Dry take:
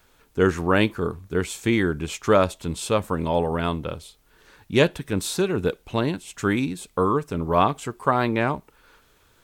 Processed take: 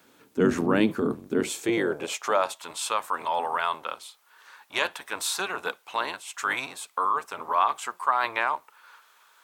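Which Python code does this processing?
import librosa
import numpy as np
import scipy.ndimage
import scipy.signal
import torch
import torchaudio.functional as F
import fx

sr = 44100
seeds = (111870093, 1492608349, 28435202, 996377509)

p1 = fx.octave_divider(x, sr, octaves=1, level_db=3.0)
p2 = fx.filter_sweep_highpass(p1, sr, from_hz=250.0, to_hz=1000.0, start_s=1.29, end_s=2.6, q=1.9)
p3 = fx.over_compress(p2, sr, threshold_db=-26.0, ratio=-1.0)
p4 = p2 + (p3 * librosa.db_to_amplitude(-2.0))
y = p4 * librosa.db_to_amplitude(-7.0)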